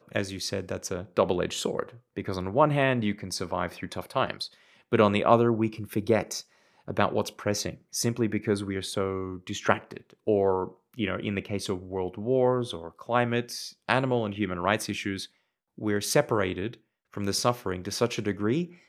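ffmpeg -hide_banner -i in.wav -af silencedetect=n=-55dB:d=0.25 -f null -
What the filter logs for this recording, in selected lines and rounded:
silence_start: 15.29
silence_end: 15.78 | silence_duration: 0.48
silence_start: 16.80
silence_end: 17.12 | silence_duration: 0.32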